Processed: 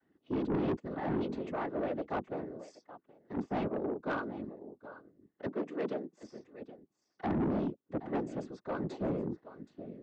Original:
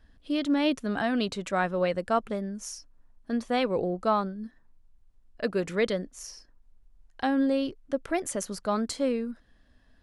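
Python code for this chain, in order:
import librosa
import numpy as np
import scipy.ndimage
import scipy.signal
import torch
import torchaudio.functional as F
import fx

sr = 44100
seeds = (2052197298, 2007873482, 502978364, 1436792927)

p1 = fx.chord_vocoder(x, sr, chord='minor triad', root=59)
p2 = fx.high_shelf(p1, sr, hz=5400.0, db=-11.5)
p3 = p2 + fx.echo_single(p2, sr, ms=773, db=-16.5, dry=0)
p4 = fx.whisperise(p3, sr, seeds[0])
p5 = 10.0 ** (-25.5 / 20.0) * np.tanh(p4 / 10.0 ** (-25.5 / 20.0))
p6 = fx.low_shelf(p5, sr, hz=440.0, db=-10.0, at=(2.67, 3.37))
p7 = fx.highpass(p6, sr, hz=150.0, slope=24, at=(5.47, 6.22))
y = p7 * 10.0 ** (-2.0 / 20.0)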